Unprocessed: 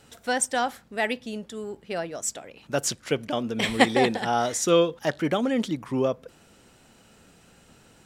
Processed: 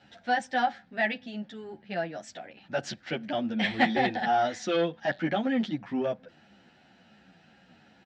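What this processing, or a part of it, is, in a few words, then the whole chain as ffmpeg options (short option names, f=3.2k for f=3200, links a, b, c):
barber-pole flanger into a guitar amplifier: -filter_complex "[0:a]asplit=2[a][b];[b]adelay=10.5,afreqshift=-2.8[c];[a][c]amix=inputs=2:normalize=1,asoftclip=type=tanh:threshold=-16.5dB,highpass=100,equalizer=f=120:t=q:w=4:g=-4,equalizer=f=200:t=q:w=4:g=5,equalizer=f=440:t=q:w=4:g=-9,equalizer=f=760:t=q:w=4:g=7,equalizer=f=1.1k:t=q:w=4:g=-9,equalizer=f=1.7k:t=q:w=4:g=7,lowpass=f=4.6k:w=0.5412,lowpass=f=4.6k:w=1.3066"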